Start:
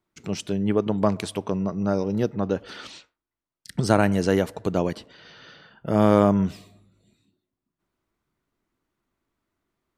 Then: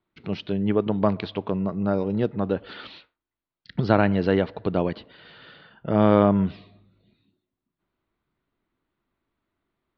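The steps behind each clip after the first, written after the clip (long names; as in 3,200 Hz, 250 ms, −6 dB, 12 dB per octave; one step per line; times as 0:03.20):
Butterworth low-pass 4,300 Hz 48 dB per octave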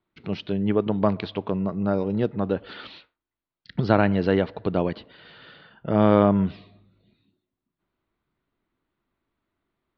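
no processing that can be heard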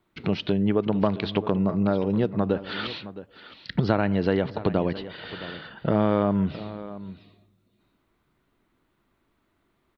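downward compressor 3 to 1, threshold −31 dBFS, peak gain reduction 14.5 dB
floating-point word with a short mantissa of 8 bits
single-tap delay 666 ms −15 dB
level +9 dB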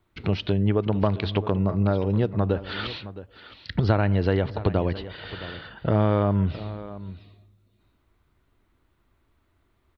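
low shelf with overshoot 120 Hz +8.5 dB, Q 1.5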